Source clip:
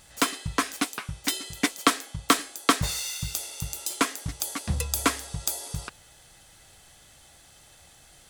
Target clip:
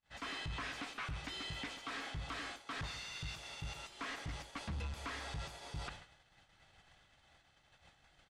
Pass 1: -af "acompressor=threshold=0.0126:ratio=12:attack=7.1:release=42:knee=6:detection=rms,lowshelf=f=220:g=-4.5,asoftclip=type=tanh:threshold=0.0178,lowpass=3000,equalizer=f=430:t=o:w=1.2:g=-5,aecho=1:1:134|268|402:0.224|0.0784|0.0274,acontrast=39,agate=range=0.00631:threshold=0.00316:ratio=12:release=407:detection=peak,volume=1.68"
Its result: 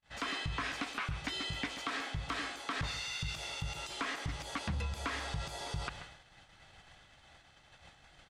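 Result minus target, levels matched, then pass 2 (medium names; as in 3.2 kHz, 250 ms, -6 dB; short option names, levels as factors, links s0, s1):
saturation: distortion -7 dB
-af "acompressor=threshold=0.0126:ratio=12:attack=7.1:release=42:knee=6:detection=rms,lowshelf=f=220:g=-4.5,asoftclip=type=tanh:threshold=0.00473,lowpass=3000,equalizer=f=430:t=o:w=1.2:g=-5,aecho=1:1:134|268|402:0.224|0.0784|0.0274,acontrast=39,agate=range=0.00631:threshold=0.00316:ratio=12:release=407:detection=peak,volume=1.68"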